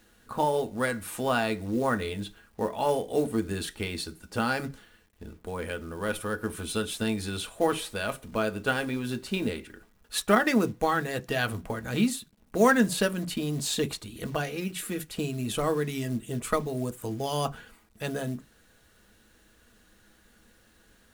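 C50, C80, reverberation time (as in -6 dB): 30.0 dB, 40.0 dB, not exponential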